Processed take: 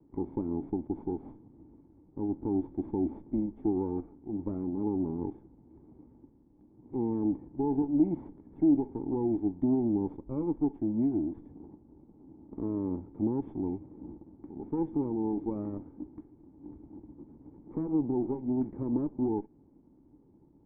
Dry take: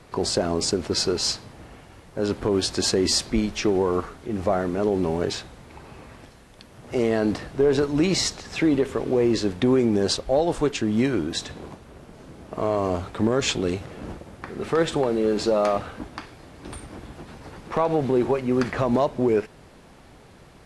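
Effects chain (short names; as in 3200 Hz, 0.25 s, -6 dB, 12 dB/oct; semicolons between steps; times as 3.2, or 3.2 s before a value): minimum comb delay 0.64 ms; vocal tract filter u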